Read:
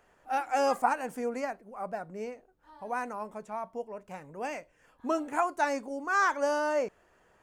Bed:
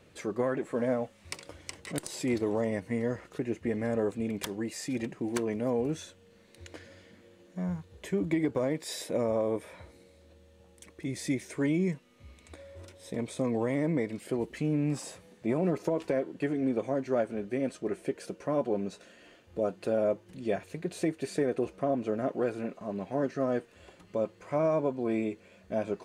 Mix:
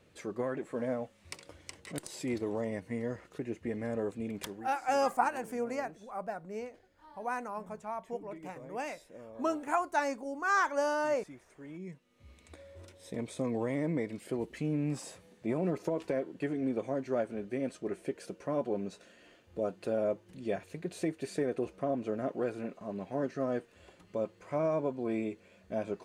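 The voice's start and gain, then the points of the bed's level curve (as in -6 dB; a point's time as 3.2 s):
4.35 s, -2.0 dB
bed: 4.5 s -5 dB
4.75 s -20.5 dB
11.63 s -20.5 dB
12.32 s -3.5 dB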